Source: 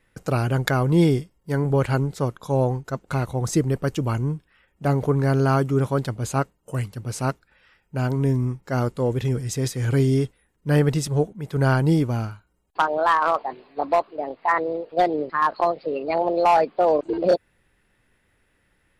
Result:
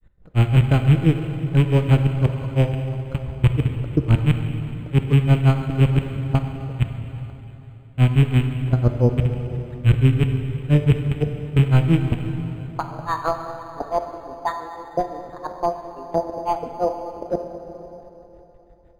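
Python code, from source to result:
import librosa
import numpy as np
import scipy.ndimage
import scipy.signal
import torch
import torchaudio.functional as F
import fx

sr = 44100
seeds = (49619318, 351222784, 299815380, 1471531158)

y = fx.rattle_buzz(x, sr, strikes_db=-23.0, level_db=-10.0)
y = fx.level_steps(y, sr, step_db=22)
y = fx.granulator(y, sr, seeds[0], grain_ms=135.0, per_s=5.9, spray_ms=18.0, spread_st=0)
y = fx.riaa(y, sr, side='playback')
y = fx.rev_plate(y, sr, seeds[1], rt60_s=3.5, hf_ratio=0.8, predelay_ms=0, drr_db=5.0)
y = np.interp(np.arange(len(y)), np.arange(len(y))[::8], y[::8])
y = F.gain(torch.from_numpy(y), 3.0).numpy()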